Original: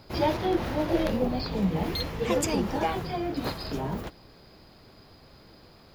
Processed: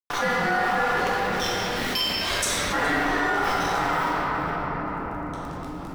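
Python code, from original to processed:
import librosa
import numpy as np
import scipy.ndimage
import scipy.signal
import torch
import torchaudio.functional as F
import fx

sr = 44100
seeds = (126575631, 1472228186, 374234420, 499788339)

y = fx.highpass(x, sr, hz=1100.0, slope=12, at=(0.92, 2.71))
y = fx.rider(y, sr, range_db=10, speed_s=2.0)
y = y * np.sin(2.0 * np.pi * 1100.0 * np.arange(len(y)) / sr)
y = np.sign(y) * np.maximum(np.abs(y) - 10.0 ** (-43.0 / 20.0), 0.0)
y = y + 10.0 ** (-19.0 / 20.0) * np.pad(y, (int(418 * sr / 1000.0), 0))[:len(y)]
y = fx.room_shoebox(y, sr, seeds[0], volume_m3=120.0, walls='hard', distance_m=0.81)
y = fx.env_flatten(y, sr, amount_pct=70)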